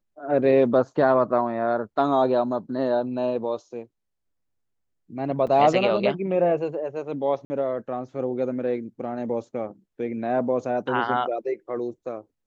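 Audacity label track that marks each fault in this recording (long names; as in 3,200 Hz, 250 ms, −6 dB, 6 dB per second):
5.470000	5.470000	drop-out 4.2 ms
7.450000	7.500000	drop-out 50 ms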